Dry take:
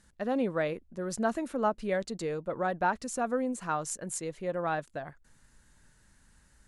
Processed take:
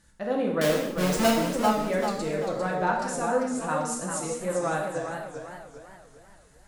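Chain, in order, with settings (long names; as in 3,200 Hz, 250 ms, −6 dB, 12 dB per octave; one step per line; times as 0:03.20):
0:00.61–0:01.31: each half-wave held at its own peak
reverb whose tail is shaped and stops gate 280 ms falling, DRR −1 dB
feedback echo with a swinging delay time 396 ms, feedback 42%, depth 128 cents, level −7 dB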